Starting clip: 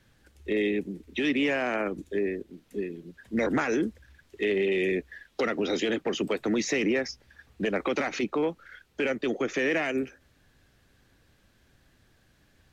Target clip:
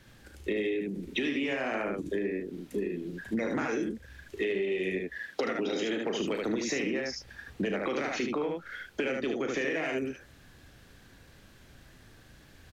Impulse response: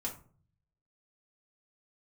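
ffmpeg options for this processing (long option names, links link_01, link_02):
-filter_complex "[0:a]asettb=1/sr,asplit=3[link_01][link_02][link_03];[link_01]atrim=end=5.094[link_04];[link_02]atrim=start=5.09:end=6.21,asetpts=PTS-STARTPTS,afade=type=in:duration=0.004:curve=qsin,afade=type=out:start_time=1.116:duration=0.004:curve=qsin,highpass=120[link_05];[link_03]atrim=start=6.206[link_06];[link_04][link_05]acrossfade=duration=0.004:curve1=hsin:curve2=qsin[link_07];[link_07][link_06]acrossfade=duration=0.004:curve1=qsin:curve2=hsin,asplit=2[link_08][link_09];[link_09]aecho=0:1:36|75:0.398|0.668[link_10];[link_08][link_10]amix=inputs=2:normalize=0,acompressor=threshold=-35dB:ratio=6,volume=6dB"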